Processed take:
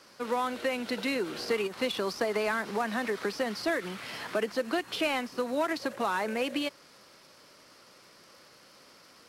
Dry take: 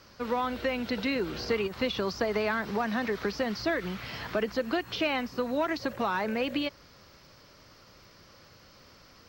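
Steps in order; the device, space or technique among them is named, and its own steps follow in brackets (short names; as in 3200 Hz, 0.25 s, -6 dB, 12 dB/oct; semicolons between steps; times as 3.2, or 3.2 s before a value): early wireless headset (HPF 230 Hz 12 dB/oct; CVSD 64 kbps)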